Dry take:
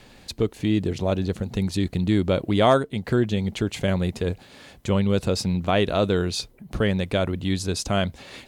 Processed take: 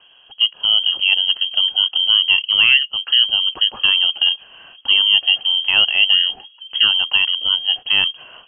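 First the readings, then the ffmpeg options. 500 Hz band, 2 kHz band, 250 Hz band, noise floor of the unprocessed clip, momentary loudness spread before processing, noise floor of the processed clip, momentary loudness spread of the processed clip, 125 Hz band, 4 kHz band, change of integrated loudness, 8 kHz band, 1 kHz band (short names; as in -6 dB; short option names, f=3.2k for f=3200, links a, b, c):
under -20 dB, +15.0 dB, under -25 dB, -50 dBFS, 7 LU, -50 dBFS, 6 LU, under -25 dB, +22.5 dB, +10.0 dB, under -40 dB, -6.0 dB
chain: -af "equalizer=f=125:t=o:w=1:g=3,equalizer=f=500:t=o:w=1:g=8,equalizer=f=1k:t=o:w=1:g=-12,dynaudnorm=f=110:g=7:m=7.5dB,lowpass=f=2.8k:t=q:w=0.5098,lowpass=f=2.8k:t=q:w=0.6013,lowpass=f=2.8k:t=q:w=0.9,lowpass=f=2.8k:t=q:w=2.563,afreqshift=-3300,volume=-1.5dB"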